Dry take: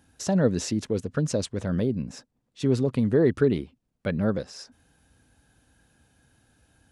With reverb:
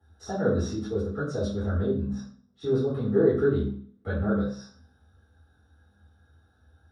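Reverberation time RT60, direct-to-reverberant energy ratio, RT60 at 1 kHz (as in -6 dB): 0.45 s, -13.0 dB, 0.45 s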